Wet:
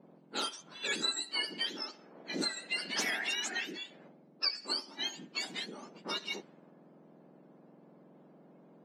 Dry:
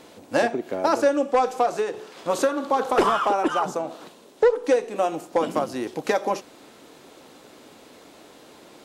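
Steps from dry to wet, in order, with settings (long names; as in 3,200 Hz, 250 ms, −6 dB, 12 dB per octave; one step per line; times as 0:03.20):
frequency axis turned over on the octave scale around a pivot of 1,500 Hz
low-pass that shuts in the quiet parts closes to 830 Hz, open at −21.5 dBFS
level −8.5 dB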